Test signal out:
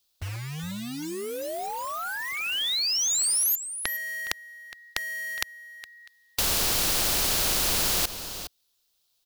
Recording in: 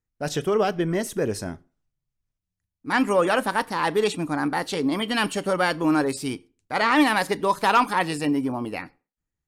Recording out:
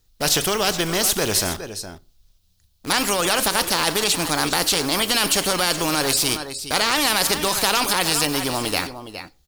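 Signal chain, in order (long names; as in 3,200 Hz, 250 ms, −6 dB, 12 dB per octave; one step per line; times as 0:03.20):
octave-band graphic EQ 125/250/500/1,000/2,000/4,000/8,000 Hz −9/−9/−4/−6/−12/+8/−4 dB
in parallel at −9 dB: bit reduction 8 bits
on the sum: dynamic equaliser 3,600 Hz, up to −6 dB, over −43 dBFS, Q 3.2
on a send: single-tap delay 414 ms −20.5 dB
on the sum: boost into a limiter +19.5 dB
every bin compressed towards the loudest bin 2 to 1
level −1 dB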